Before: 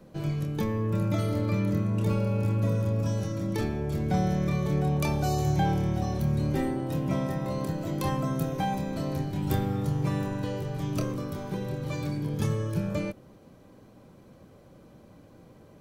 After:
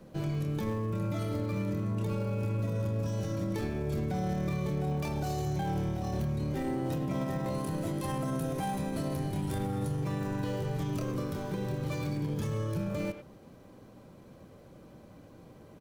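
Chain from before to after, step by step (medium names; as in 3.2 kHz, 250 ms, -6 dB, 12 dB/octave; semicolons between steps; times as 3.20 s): dead-time distortion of 0.077 ms; 7.54–10.02 s: peaking EQ 10 kHz +11.5 dB 0.36 oct; peak limiter -25 dBFS, peak gain reduction 11 dB; speakerphone echo 100 ms, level -9 dB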